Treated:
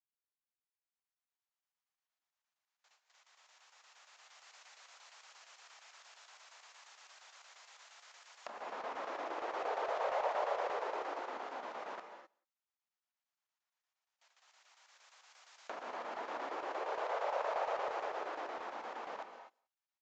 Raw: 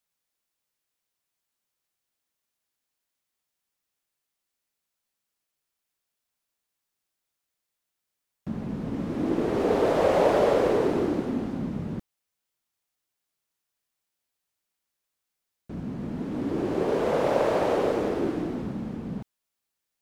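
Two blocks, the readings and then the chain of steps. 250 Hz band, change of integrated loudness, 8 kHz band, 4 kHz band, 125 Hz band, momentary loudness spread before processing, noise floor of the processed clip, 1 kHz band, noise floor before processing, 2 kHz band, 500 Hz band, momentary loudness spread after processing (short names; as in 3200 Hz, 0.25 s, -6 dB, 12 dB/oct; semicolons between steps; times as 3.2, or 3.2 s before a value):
-28.5 dB, -14.0 dB, n/a, -8.5 dB, under -40 dB, 14 LU, under -85 dBFS, -6.0 dB, -84 dBFS, -6.5 dB, -15.5 dB, 21 LU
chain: recorder AGC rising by 6.6 dB/s; gate with hold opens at -52 dBFS; HPF 720 Hz 24 dB/oct; high shelf 2100 Hz -10 dB; compressor 2:1, threshold -48 dBFS, peak gain reduction 12.5 dB; chopper 8.6 Hz, depth 65%, duty 80%; outdoor echo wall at 31 m, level -29 dB; non-linear reverb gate 0.28 s rising, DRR 7 dB; downsampling 16000 Hz; gain +6 dB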